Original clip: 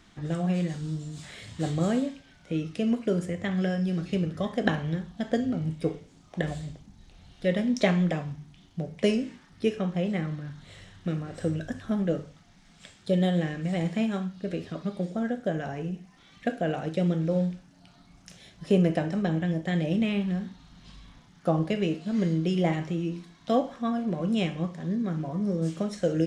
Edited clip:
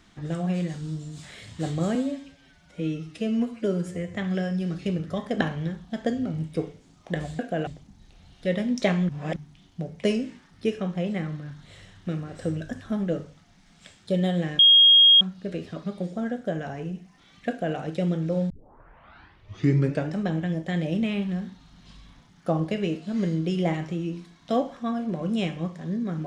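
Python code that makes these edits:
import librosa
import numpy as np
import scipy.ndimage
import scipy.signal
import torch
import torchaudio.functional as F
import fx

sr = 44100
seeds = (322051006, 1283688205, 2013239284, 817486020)

y = fx.edit(x, sr, fx.stretch_span(start_s=1.95, length_s=1.46, factor=1.5),
    fx.reverse_span(start_s=8.08, length_s=0.27),
    fx.bleep(start_s=13.58, length_s=0.62, hz=3260.0, db=-11.0),
    fx.duplicate(start_s=16.48, length_s=0.28, to_s=6.66),
    fx.tape_start(start_s=17.49, length_s=1.65), tone=tone)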